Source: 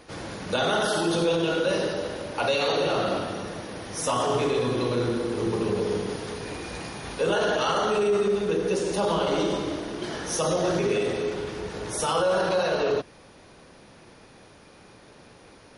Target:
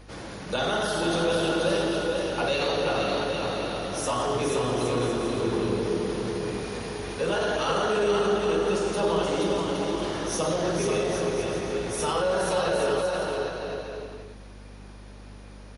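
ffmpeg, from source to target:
-af "aeval=exprs='val(0)+0.00562*(sin(2*PI*50*n/s)+sin(2*PI*2*50*n/s)/2+sin(2*PI*3*50*n/s)/3+sin(2*PI*4*50*n/s)/4+sin(2*PI*5*50*n/s)/5)':c=same,aecho=1:1:480|816|1051|1216|1331:0.631|0.398|0.251|0.158|0.1,volume=-2.5dB"

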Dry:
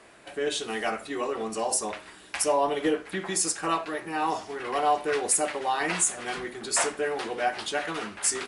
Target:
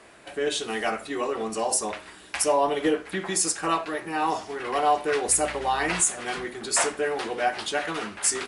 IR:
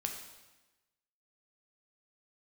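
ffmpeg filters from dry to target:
-filter_complex "[0:a]equalizer=f=66:w=5.6:g=5,asettb=1/sr,asplit=3[a][b][c];[a]atrim=end=5.284[d];[b]atrim=start=5.28:end=6.01,asetpts=PTS-STARTPTS,afade=t=in:d=0.004:c=qsin,afade=t=out:st=0.726:d=0.004:c=qsin,aeval=exprs='val(0)+0.00562*(sin(2*PI*60*n/s)+sin(2*PI*2*60*n/s)/2+sin(2*PI*3*60*n/s)/3+sin(2*PI*4*60*n/s)/4+sin(2*PI*5*60*n/s)/5)':c=same[e];[c]atrim=start=6.006[f];[d][e]acrossfade=d=0.004:c1=hsin:c2=qsin[g];[g][f]acrossfade=d=0.004:c1=qsin:c2=hsin,volume=2dB"

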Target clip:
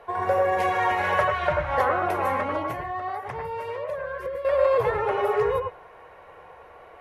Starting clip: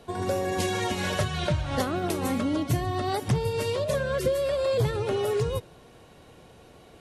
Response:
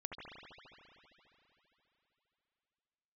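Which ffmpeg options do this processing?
-filter_complex "[0:a]equalizer=f=125:t=o:w=1:g=-6,equalizer=f=250:t=o:w=1:g=-12,equalizer=f=500:t=o:w=1:g=8,equalizer=f=1k:t=o:w=1:g=12,equalizer=f=2k:t=o:w=1:g=10,equalizer=f=4k:t=o:w=1:g=-7,equalizer=f=8k:t=o:w=1:g=-11,asettb=1/sr,asplit=3[a][b][c];[a]atrim=end=2.694[d];[b]atrim=start=2.69:end=4.45,asetpts=PTS-STARTPTS,afade=t=in:d=0.004:c=qsin,afade=t=out:st=1.756:d=0.004:c=qsin,acompressor=threshold=-27dB:ratio=6[e];[c]atrim=start=4.446[f];[d][e]acrossfade=d=0.004:c1=hsin:c2=qsin[g];[g][f]acrossfade=d=0.004:c1=qsin:c2=hsin[h];[1:a]atrim=start_sample=2205,atrim=end_sample=3969,asetrate=33957,aresample=44100[i];[h][i]afir=irnorm=-1:irlink=0"

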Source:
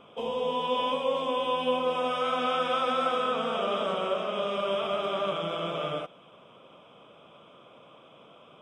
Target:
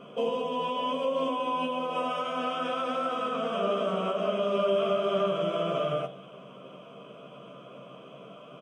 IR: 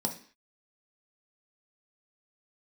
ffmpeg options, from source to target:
-filter_complex "[0:a]alimiter=level_in=2.5dB:limit=-24dB:level=0:latency=1:release=212,volume=-2.5dB,asplit=2[a][b];[b]adelay=15,volume=-5.5dB[c];[a][c]amix=inputs=2:normalize=0,asplit=2[d][e];[1:a]atrim=start_sample=2205,asetrate=34839,aresample=44100[f];[e][f]afir=irnorm=-1:irlink=0,volume=-8.5dB[g];[d][g]amix=inputs=2:normalize=0"

